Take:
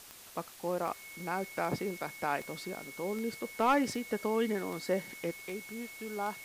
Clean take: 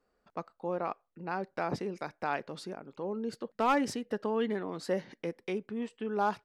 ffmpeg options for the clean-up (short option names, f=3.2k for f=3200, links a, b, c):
-af "adeclick=t=4,bandreject=f=2.2k:w=30,afwtdn=0.0028,asetnsamples=n=441:p=0,asendcmd='5.31 volume volume 6.5dB',volume=0dB"